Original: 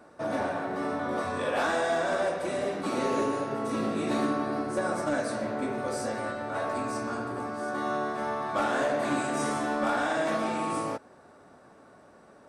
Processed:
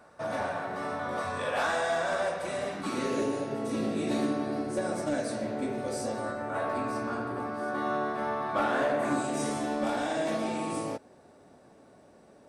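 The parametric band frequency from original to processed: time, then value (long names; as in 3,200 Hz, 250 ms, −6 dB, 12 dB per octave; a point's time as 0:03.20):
parametric band −9 dB 1 octave
0:02.60 310 Hz
0:03.28 1,200 Hz
0:05.96 1,200 Hz
0:06.72 7,200 Hz
0:08.91 7,200 Hz
0:09.35 1,300 Hz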